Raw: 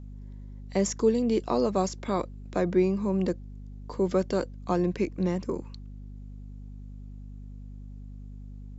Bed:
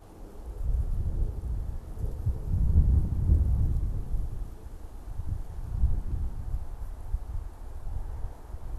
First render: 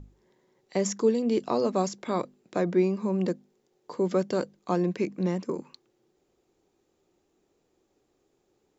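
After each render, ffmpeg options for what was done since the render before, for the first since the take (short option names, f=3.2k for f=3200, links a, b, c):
-af "bandreject=f=50:t=h:w=6,bandreject=f=100:t=h:w=6,bandreject=f=150:t=h:w=6,bandreject=f=200:t=h:w=6,bandreject=f=250:t=h:w=6"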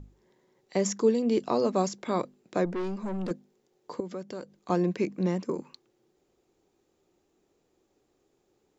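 -filter_complex "[0:a]asettb=1/sr,asplit=3[a][b][c];[a]atrim=end=2.654[d];[b]atrim=start=2.65:end=3.31,asetpts=PTS-STARTPTS,afade=t=in:d=0.004:c=qsin,afade=t=out:st=0.656:d=0.004:c=qsin,aeval=exprs='(tanh(28.2*val(0)+0.35)-tanh(0.35))/28.2':c=same[e];[c]atrim=start=3.306[f];[d][e]acrossfade=d=0.004:c1=hsin:c2=qsin[g];[g][f]acrossfade=d=0.004:c1=qsin:c2=hsin,asettb=1/sr,asplit=3[h][i][j];[h]atrim=end=4.004[k];[i]atrim=start=4:end=4.7,asetpts=PTS-STARTPTS,afade=t=in:d=0.004:c=qsin,afade=t=out:st=0.696:d=0.004:c=qsin,acompressor=threshold=-43dB:ratio=2:attack=3.2:release=140:knee=1:detection=peak[l];[j]atrim=start=4.696[m];[k][l]acrossfade=d=0.004:c1=hsin:c2=qsin[n];[n][m]acrossfade=d=0.004:c1=qsin:c2=hsin"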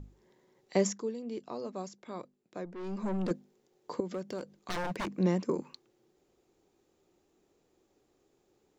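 -filter_complex "[0:a]asettb=1/sr,asplit=3[a][b][c];[a]atrim=end=4.064[d];[b]atrim=start=4.06:end=5.18,asetpts=PTS-STARTPTS,afade=t=in:d=0.004:c=qsin,afade=t=out:st=1.116:d=0.004:c=qsin,aeval=exprs='0.0355*(abs(mod(val(0)/0.0355+3,4)-2)-1)':c=same[e];[c]atrim=start=5.176[f];[d][e]acrossfade=d=0.004:c1=hsin:c2=qsin[g];[g][f]acrossfade=d=0.004:c1=qsin:c2=hsin,asplit=3[h][i][j];[h]atrim=end=1.11,asetpts=PTS-STARTPTS,afade=t=out:st=0.81:d=0.3:c=qua:silence=0.211349[k];[i]atrim=start=1.11:end=2.69,asetpts=PTS-STARTPTS,volume=-13.5dB[l];[j]atrim=start=2.69,asetpts=PTS-STARTPTS,afade=t=in:d=0.3:c=qua:silence=0.211349[m];[k][l][m]concat=n=3:v=0:a=1"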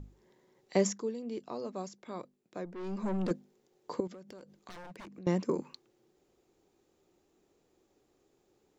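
-filter_complex "[0:a]asettb=1/sr,asplit=3[a][b][c];[a]atrim=end=4.074[d];[b]atrim=start=4.07:end=5.27,asetpts=PTS-STARTPTS,afade=t=in:d=0.004:c=qsin,afade=t=out:st=1.196:d=0.004:c=qsin,acompressor=threshold=-47dB:ratio=5:attack=3.2:release=140:knee=1:detection=peak[e];[c]atrim=start=5.266[f];[d][e]acrossfade=d=0.004:c1=hsin:c2=qsin[g];[g][f]acrossfade=d=0.004:c1=qsin:c2=hsin"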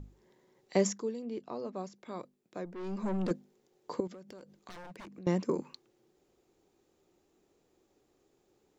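-filter_complex "[0:a]asettb=1/sr,asplit=3[a][b][c];[a]atrim=end=1.254[d];[b]atrim=start=1.25:end=1.96,asetpts=PTS-STARTPTS,afade=t=in:d=0.004:c=qsin,afade=t=out:st=0.706:d=0.004:c=qsin,highshelf=f=6k:g=-12[e];[c]atrim=start=1.956[f];[d][e]acrossfade=d=0.004:c1=hsin:c2=qsin[g];[g][f]acrossfade=d=0.004:c1=qsin:c2=hsin"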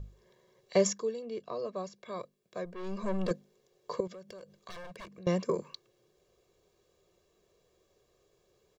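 -af "equalizer=f=3.7k:w=1.5:g=3,aecho=1:1:1.8:0.78"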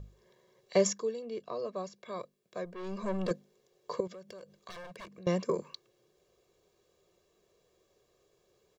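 -af "lowshelf=f=94:g=-5.5"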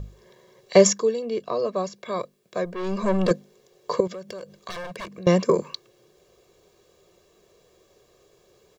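-af "volume=11.5dB"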